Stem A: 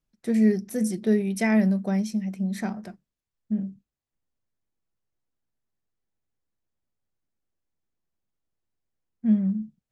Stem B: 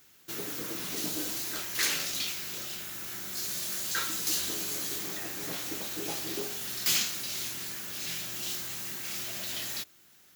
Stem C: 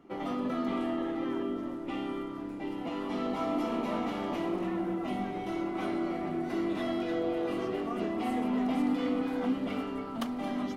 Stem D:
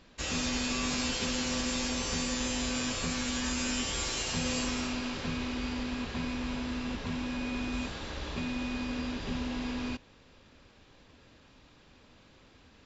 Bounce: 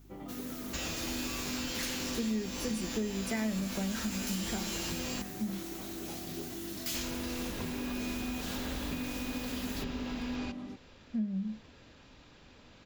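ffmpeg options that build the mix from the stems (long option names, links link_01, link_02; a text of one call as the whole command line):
ffmpeg -i stem1.wav -i stem2.wav -i stem3.wav -i stem4.wav -filter_complex "[0:a]adelay=1900,volume=-5.5dB[link_01];[1:a]acontrast=51,aeval=exprs='val(0)+0.01*(sin(2*PI*50*n/s)+sin(2*PI*2*50*n/s)/2+sin(2*PI*3*50*n/s)/3+sin(2*PI*4*50*n/s)/4+sin(2*PI*5*50*n/s)/5)':channel_layout=same,volume=-15dB[link_02];[2:a]alimiter=level_in=3dB:limit=-24dB:level=0:latency=1:release=123,volume=-3dB,equalizer=frequency=86:width_type=o:width=2.9:gain=15,volume=-13.5dB[link_03];[3:a]bandreject=frequency=1100:width=21,acompressor=threshold=-36dB:ratio=6,adelay=550,volume=2dB,asplit=3[link_04][link_05][link_06];[link_04]atrim=end=5.22,asetpts=PTS-STARTPTS,afade=type=out:start_time=5.216:duration=0.004:curve=hsin[link_07];[link_05]atrim=start=5.22:end=6.94,asetpts=PTS-STARTPTS,volume=0[link_08];[link_06]atrim=start=6.94,asetpts=PTS-STARTPTS,afade=type=in:duration=0.004:curve=hsin[link_09];[link_07][link_08][link_09]concat=n=3:v=0:a=1[link_10];[link_01][link_02][link_03][link_10]amix=inputs=4:normalize=0,acompressor=threshold=-31dB:ratio=4" out.wav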